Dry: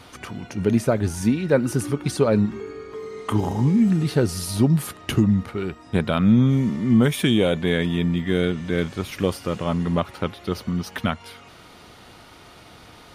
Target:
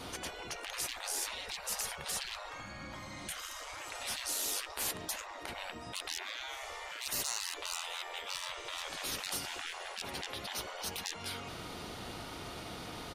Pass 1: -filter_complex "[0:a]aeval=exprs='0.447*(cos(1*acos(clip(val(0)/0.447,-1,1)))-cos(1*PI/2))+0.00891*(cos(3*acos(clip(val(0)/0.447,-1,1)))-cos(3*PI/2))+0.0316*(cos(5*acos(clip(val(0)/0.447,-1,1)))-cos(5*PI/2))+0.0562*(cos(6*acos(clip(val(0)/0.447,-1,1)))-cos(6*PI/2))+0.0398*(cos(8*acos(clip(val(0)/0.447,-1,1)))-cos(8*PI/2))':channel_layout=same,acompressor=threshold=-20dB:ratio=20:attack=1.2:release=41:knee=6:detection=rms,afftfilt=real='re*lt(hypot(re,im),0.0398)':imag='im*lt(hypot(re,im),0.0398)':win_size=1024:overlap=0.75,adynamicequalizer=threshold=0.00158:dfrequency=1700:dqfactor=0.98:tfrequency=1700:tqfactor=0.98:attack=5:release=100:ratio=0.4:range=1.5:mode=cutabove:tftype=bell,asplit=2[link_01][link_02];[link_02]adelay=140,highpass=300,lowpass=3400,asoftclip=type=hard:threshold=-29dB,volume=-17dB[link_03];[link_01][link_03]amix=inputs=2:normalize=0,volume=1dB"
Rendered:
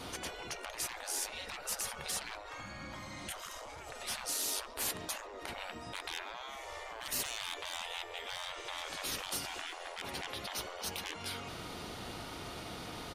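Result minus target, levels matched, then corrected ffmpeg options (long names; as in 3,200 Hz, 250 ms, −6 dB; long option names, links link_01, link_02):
downward compressor: peak gain reduction +12 dB
-filter_complex "[0:a]aeval=exprs='0.447*(cos(1*acos(clip(val(0)/0.447,-1,1)))-cos(1*PI/2))+0.00891*(cos(3*acos(clip(val(0)/0.447,-1,1)))-cos(3*PI/2))+0.0316*(cos(5*acos(clip(val(0)/0.447,-1,1)))-cos(5*PI/2))+0.0562*(cos(6*acos(clip(val(0)/0.447,-1,1)))-cos(6*PI/2))+0.0398*(cos(8*acos(clip(val(0)/0.447,-1,1)))-cos(8*PI/2))':channel_layout=same,afftfilt=real='re*lt(hypot(re,im),0.0398)':imag='im*lt(hypot(re,im),0.0398)':win_size=1024:overlap=0.75,adynamicequalizer=threshold=0.00158:dfrequency=1700:dqfactor=0.98:tfrequency=1700:tqfactor=0.98:attack=5:release=100:ratio=0.4:range=1.5:mode=cutabove:tftype=bell,asplit=2[link_01][link_02];[link_02]adelay=140,highpass=300,lowpass=3400,asoftclip=type=hard:threshold=-29dB,volume=-17dB[link_03];[link_01][link_03]amix=inputs=2:normalize=0,volume=1dB"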